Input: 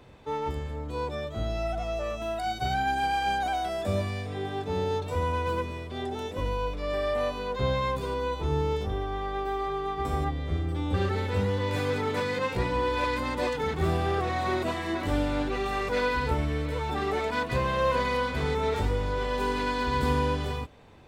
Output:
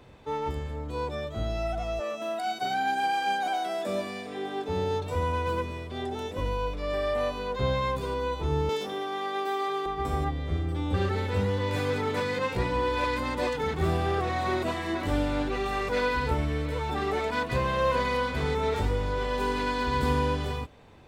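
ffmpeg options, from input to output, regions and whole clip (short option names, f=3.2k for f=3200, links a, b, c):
-filter_complex "[0:a]asettb=1/sr,asplit=3[a][b][c];[a]atrim=end=2.004[d];[b]atrim=start=2:end=4.69,asetpts=PTS-STARTPTS,afade=t=in:d=0.004:c=qsin,afade=t=out:st=2.686:d=0.004:c=qsin,highpass=f=200:w=0.5412,highpass=f=200:w=1.3066,aecho=1:1:203:0.168,atrim=end_sample=118629[e];[c]atrim=start=4.686[f];[d][e]acrossfade=d=0.004:c1=hsin:c2=qsin[g];[g][f]acrossfade=d=0.004:c1=qsin:c2=hsin,asettb=1/sr,asplit=3[h][i][j];[h]atrim=end=8.694[k];[i]atrim=start=8.69:end=9.86,asetpts=PTS-STARTPTS,afade=t=in:d=0.004:c=qsin,afade=t=out:st=1.166:d=0.004:c=qsin,highpass=f=200:w=0.5412,highpass=f=200:w=1.3066,highshelf=f=2.1k:g=9[l];[j]atrim=start=9.856[m];[k][l]acrossfade=d=0.004:c1=hsin:c2=qsin[n];[n][m]acrossfade=d=0.004:c1=qsin:c2=hsin"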